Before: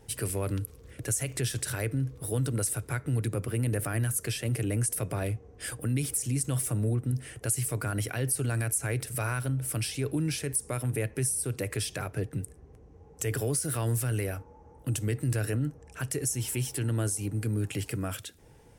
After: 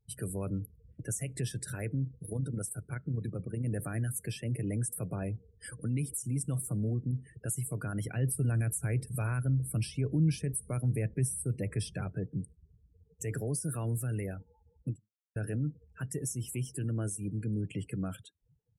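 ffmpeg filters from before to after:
-filter_complex "[0:a]asettb=1/sr,asplit=3[s0][s1][s2];[s0]atrim=end=2.044[s3];[s1]atrim=start=2.04:end=3.66,asetpts=PTS-STARTPTS,afade=t=in:d=0.004:c=qsin,afade=t=out:st=1.616:d=0.004:c=qsin,tremolo=f=28:d=0.462[s4];[s2]atrim=start=3.656[s5];[s3][s4]acrossfade=d=0.004:c1=hsin:c2=qsin[s6];[s6][s5]acrossfade=d=0.004:c1=qsin:c2=hsin,asettb=1/sr,asplit=3[s7][s8][s9];[s7]atrim=end=8.054[s10];[s8]atrim=start=8.05:end=12.13,asetpts=PTS-STARTPTS,afade=t=in:d=0.004:c=qsin,afade=t=out:st=4.076:d=0.004:c=qsin,lowshelf=f=150:g=8[s11];[s9]atrim=start=12.126[s12];[s10][s11]acrossfade=d=0.004:c1=hsin:c2=qsin[s13];[s13][s12]acrossfade=d=0.004:c1=qsin:c2=hsin,asplit=2[s14][s15];[s14]atrim=end=15.36,asetpts=PTS-STARTPTS,afade=t=out:st=14.9:d=0.46:c=exp[s16];[s15]atrim=start=15.36,asetpts=PTS-STARTPTS,afade=t=in:d=0.004:c=hsin[s17];[s16][s17]concat=n=2:v=0:a=1,afftdn=nr=33:nf=-39,equalizer=f=180:t=o:w=0.65:g=10,volume=0.473"

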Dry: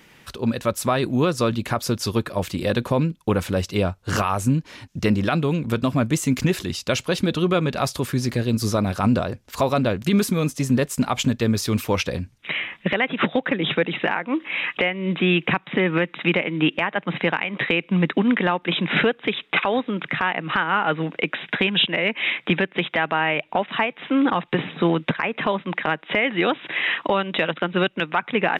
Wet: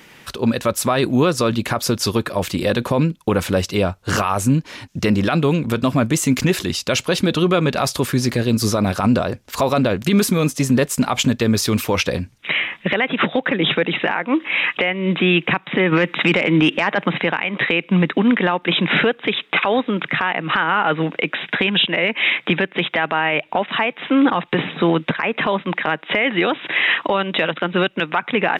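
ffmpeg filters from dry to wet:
-filter_complex "[0:a]asplit=3[s0][s1][s2];[s0]afade=t=out:st=15.91:d=0.02[s3];[s1]acontrast=83,afade=t=in:st=15.91:d=0.02,afade=t=out:st=17.07:d=0.02[s4];[s2]afade=t=in:st=17.07:d=0.02[s5];[s3][s4][s5]amix=inputs=3:normalize=0,lowshelf=f=150:g=-5.5,alimiter=limit=0.2:level=0:latency=1:release=31,volume=2.11"

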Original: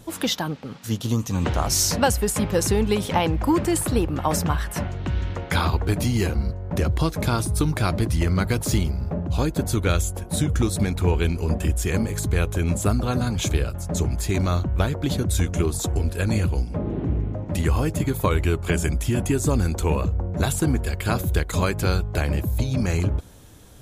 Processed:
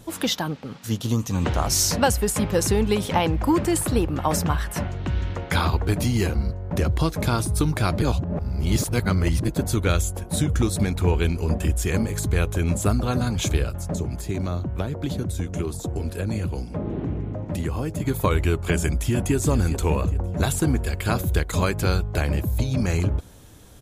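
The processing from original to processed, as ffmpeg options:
-filter_complex "[0:a]asettb=1/sr,asplit=3[s0][s1][s2];[s0]atrim=end=13.934[s3];[s1]atrim=start=13.93:end=18.06,asetpts=PTS-STARTPTS,afade=t=in:d=0.004:c=qsin,afade=t=out:st=4.126:d=0.004:c=qsin,acrossover=split=89|760[s4][s5][s6];[s4]acompressor=threshold=0.0158:ratio=4[s7];[s5]acompressor=threshold=0.0631:ratio=4[s8];[s6]acompressor=threshold=0.0112:ratio=4[s9];[s7][s8][s9]amix=inputs=3:normalize=0[s10];[s2]atrim=start=18.056[s11];[s3][s10]acrossfade=d=0.004:c1=hsin:c2=qsin[s12];[s12][s11]acrossfade=d=0.004:c1=qsin:c2=hsin,asplit=2[s13][s14];[s14]afade=t=in:st=18.88:d=0.01,afade=t=out:st=19.35:d=0.01,aecho=0:1:410|820|1230|1640|2050:0.251189|0.113035|0.0508657|0.0228896|0.0103003[s15];[s13][s15]amix=inputs=2:normalize=0,asplit=3[s16][s17][s18];[s16]atrim=end=8.022[s19];[s17]atrim=start=8.018:end=9.482,asetpts=PTS-STARTPTS,areverse[s20];[s18]atrim=start=9.478[s21];[s19][s20]acrossfade=d=0.004:c1=hsin:c2=hsin[s22];[s22][s21]acrossfade=d=0.004:c1=hsin:c2=hsin"

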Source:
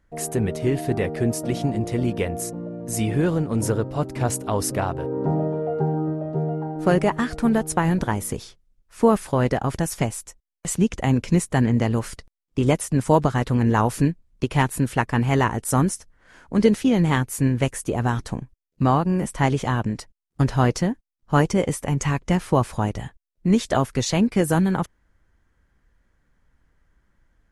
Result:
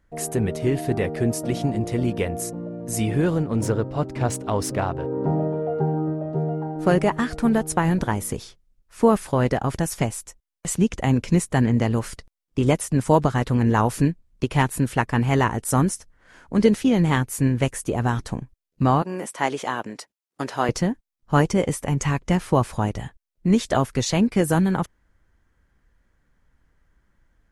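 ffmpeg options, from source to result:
-filter_complex "[0:a]asettb=1/sr,asplit=3[s0][s1][s2];[s0]atrim=end=3.434[s3];[s1]atrim=start=3.43:end=6.32,asetpts=PTS-STARTPTS,afade=t=in:d=0.004:c=qsin,afade=t=out:st=2.886:d=0.004:c=qsin,adynamicsmooth=sensitivity=5.5:basefreq=6000[s4];[s2]atrim=start=6.316[s5];[s3][s4]acrossfade=d=0.004:c1=hsin:c2=qsin[s6];[s6][s5]acrossfade=d=0.004:c1=qsin:c2=hsin,asettb=1/sr,asplit=3[s7][s8][s9];[s7]atrim=end=19.024[s10];[s8]atrim=start=19.02:end=20.69,asetpts=PTS-STARTPTS,afade=t=in:d=0.004:c=qsin,afade=t=out:st=1.666:d=0.004:c=qsin,highpass=370[s11];[s9]atrim=start=20.686[s12];[s10][s11]acrossfade=d=0.004:c1=hsin:c2=qsin[s13];[s13][s12]acrossfade=d=0.004:c1=qsin:c2=hsin"

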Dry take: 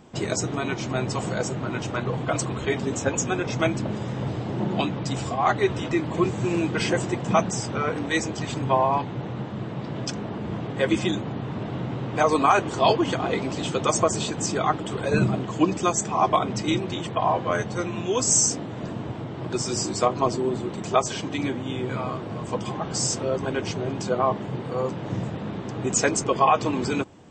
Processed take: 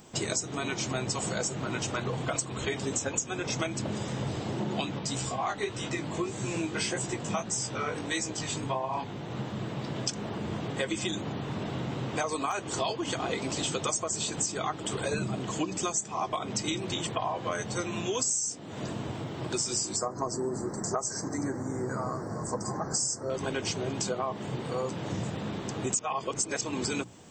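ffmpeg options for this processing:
-filter_complex "[0:a]asplit=3[s0][s1][s2];[s0]afade=t=out:st=4.98:d=0.02[s3];[s1]flanger=delay=15:depth=5.4:speed=1.7,afade=t=in:st=4.98:d=0.02,afade=t=out:st=9.3:d=0.02[s4];[s2]afade=t=in:st=9.3:d=0.02[s5];[s3][s4][s5]amix=inputs=3:normalize=0,asettb=1/sr,asplit=3[s6][s7][s8];[s6]atrim=end=19.964[s9];[s7]atrim=start=19.96:end=23.3,asetpts=PTS-STARTPTS,afade=t=in:d=0.004:c=qsin,afade=t=out:st=3.336:d=0.004:c=qsin,asuperstop=centerf=3000:order=8:qfactor=1[s10];[s8]atrim=start=23.296[s11];[s9][s10]acrossfade=d=0.004:c1=hsin:c2=qsin[s12];[s12][s11]acrossfade=d=0.004:c1=qsin:c2=hsin,asplit=3[s13][s14][s15];[s13]atrim=end=25.992[s16];[s14]atrim=start=25.988:end=26.612,asetpts=PTS-STARTPTS,areverse[s17];[s15]atrim=start=26.608[s18];[s16][s17]acrossfade=d=0.004:c1=hsin:c2=hsin[s19];[s19][s18]acrossfade=d=0.004:c1=hsin:c2=hsin,aemphasis=mode=production:type=75fm,bandreject=f=60:t=h:w=6,bandreject=f=120:t=h:w=6,bandreject=f=180:t=h:w=6,bandreject=f=240:t=h:w=6,bandreject=f=300:t=h:w=6,acompressor=threshold=0.0562:ratio=12,volume=0.794"

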